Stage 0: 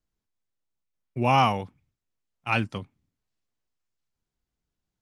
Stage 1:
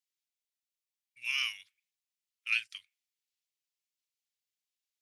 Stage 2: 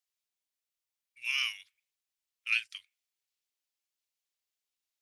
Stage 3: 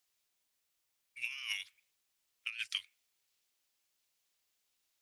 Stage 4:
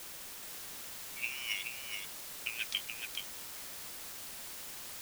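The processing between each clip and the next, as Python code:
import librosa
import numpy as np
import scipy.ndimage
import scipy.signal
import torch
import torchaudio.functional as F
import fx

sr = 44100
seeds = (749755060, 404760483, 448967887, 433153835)

y1 = scipy.signal.sosfilt(scipy.signal.cheby2(4, 50, 850.0, 'highpass', fs=sr, output='sos'), x)
y2 = fx.peak_eq(y1, sr, hz=160.0, db=-15.0, octaves=0.85)
y2 = y2 * librosa.db_to_amplitude(1.0)
y3 = fx.over_compress(y2, sr, threshold_db=-42.0, ratio=-1.0)
y3 = y3 * librosa.db_to_amplitude(1.0)
y4 = fx.quant_dither(y3, sr, seeds[0], bits=8, dither='triangular')
y4 = y4 + 10.0 ** (-5.5 / 20.0) * np.pad(y4, (int(426 * sr / 1000.0), 0))[:len(y4)]
y4 = y4 * librosa.db_to_amplitude(1.5)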